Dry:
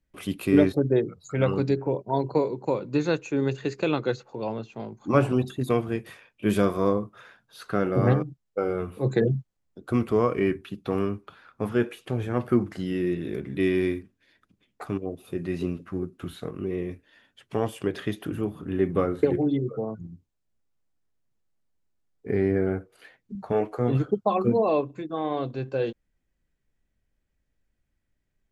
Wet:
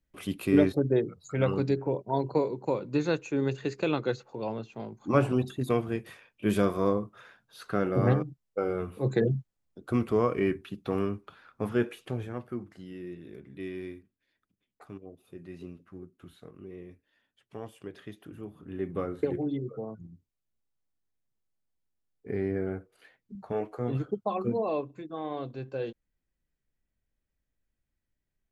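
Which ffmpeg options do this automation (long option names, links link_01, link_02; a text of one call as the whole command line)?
ffmpeg -i in.wav -af "volume=4.5dB,afade=type=out:start_time=12.01:duration=0.44:silence=0.266073,afade=type=in:start_time=18.33:duration=0.91:silence=0.421697" out.wav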